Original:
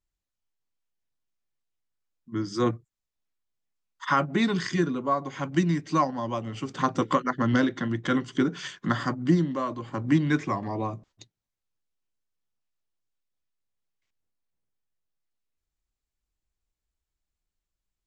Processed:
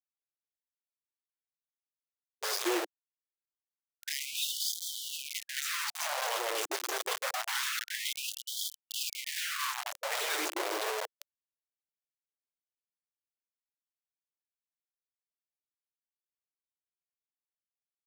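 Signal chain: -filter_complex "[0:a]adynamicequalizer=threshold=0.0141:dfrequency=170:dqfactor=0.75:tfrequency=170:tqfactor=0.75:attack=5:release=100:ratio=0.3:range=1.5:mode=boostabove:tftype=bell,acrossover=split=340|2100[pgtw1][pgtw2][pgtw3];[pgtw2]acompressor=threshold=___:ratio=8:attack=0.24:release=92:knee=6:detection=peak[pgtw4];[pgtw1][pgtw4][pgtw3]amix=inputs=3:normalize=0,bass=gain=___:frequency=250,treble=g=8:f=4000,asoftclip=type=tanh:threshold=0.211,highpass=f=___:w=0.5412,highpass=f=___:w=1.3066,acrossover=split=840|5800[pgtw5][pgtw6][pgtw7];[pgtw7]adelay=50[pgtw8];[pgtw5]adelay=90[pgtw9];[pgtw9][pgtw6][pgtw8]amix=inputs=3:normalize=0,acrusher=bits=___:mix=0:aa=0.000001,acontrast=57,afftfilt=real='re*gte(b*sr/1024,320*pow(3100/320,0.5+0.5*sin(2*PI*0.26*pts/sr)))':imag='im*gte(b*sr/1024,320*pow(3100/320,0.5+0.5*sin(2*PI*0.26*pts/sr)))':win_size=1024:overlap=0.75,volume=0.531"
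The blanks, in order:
0.02, 2, 75, 75, 4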